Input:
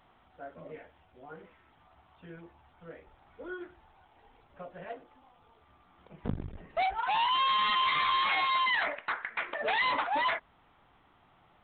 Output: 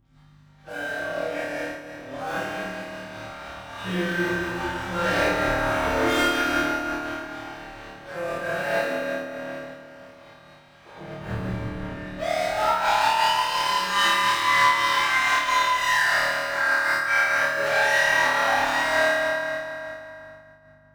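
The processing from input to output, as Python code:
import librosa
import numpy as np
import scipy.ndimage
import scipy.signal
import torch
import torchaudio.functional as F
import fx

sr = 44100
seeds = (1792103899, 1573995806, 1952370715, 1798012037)

y = fx.doppler_pass(x, sr, speed_mps=14, closest_m=3.8, pass_at_s=3.17)
y = fx.peak_eq(y, sr, hz=1600.0, db=8.5, octaves=0.22)
y = fx.fold_sine(y, sr, drive_db=14, ceiling_db=-17.0)
y = fx.rider(y, sr, range_db=3, speed_s=2.0)
y = fx.leveller(y, sr, passes=5)
y = fx.add_hum(y, sr, base_hz=50, snr_db=21)
y = fx.stretch_vocoder_free(y, sr, factor=1.8)
y = fx.low_shelf(y, sr, hz=140.0, db=-8.0)
y = fx.room_flutter(y, sr, wall_m=4.6, rt60_s=1.1)
y = fx.rev_fdn(y, sr, rt60_s=3.0, lf_ratio=1.0, hf_ratio=0.75, size_ms=51.0, drr_db=-7.5)
y = fx.am_noise(y, sr, seeds[0], hz=5.7, depth_pct=65)
y = y * 10.0 ** (-6.0 / 20.0)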